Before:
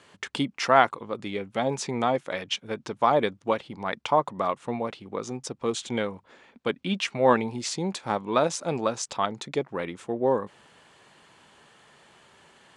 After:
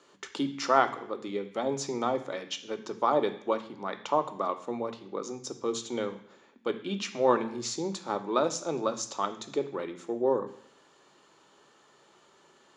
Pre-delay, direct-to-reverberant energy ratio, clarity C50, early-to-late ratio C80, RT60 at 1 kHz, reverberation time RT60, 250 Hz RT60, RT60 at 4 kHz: 3 ms, 8.5 dB, 13.0 dB, 16.0 dB, 0.70 s, 0.70 s, 0.75 s, 0.70 s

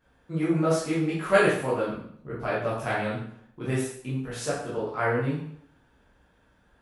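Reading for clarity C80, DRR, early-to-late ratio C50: 6.5 dB, -9.0 dB, 2.0 dB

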